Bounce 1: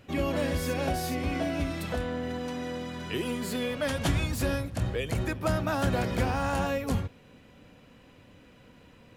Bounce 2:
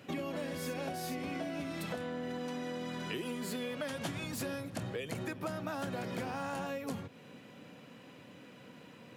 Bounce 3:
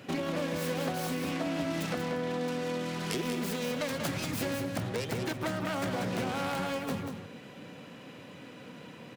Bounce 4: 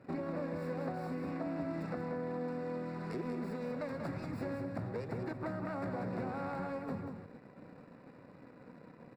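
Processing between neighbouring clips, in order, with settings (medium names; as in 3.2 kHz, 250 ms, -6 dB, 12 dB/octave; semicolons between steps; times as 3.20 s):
high-pass 130 Hz 24 dB/octave; compression 6:1, threshold -38 dBFS, peak gain reduction 13.5 dB; trim +2 dB
self-modulated delay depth 0.32 ms; delay 188 ms -7 dB; trim +5.5 dB
in parallel at -6 dB: bit crusher 7-bit; on the sum: boxcar filter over 14 samples; trim -8.5 dB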